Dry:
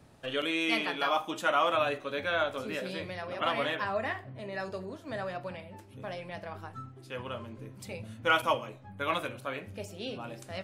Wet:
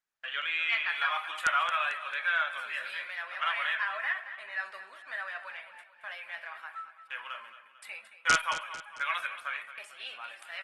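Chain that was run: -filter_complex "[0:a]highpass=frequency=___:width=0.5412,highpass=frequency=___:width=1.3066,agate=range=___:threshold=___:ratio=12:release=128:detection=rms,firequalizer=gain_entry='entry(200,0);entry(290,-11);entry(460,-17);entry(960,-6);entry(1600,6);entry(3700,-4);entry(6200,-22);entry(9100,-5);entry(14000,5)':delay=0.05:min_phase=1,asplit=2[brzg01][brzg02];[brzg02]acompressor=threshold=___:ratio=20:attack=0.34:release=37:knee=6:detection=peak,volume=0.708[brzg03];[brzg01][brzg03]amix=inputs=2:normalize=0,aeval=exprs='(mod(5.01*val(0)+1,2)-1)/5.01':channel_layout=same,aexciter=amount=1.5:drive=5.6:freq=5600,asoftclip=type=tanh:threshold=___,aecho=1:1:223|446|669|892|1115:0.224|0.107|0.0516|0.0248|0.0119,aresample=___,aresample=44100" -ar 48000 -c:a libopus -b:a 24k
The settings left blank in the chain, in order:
600, 600, 0.0282, 0.00224, 0.00891, 0.355, 22050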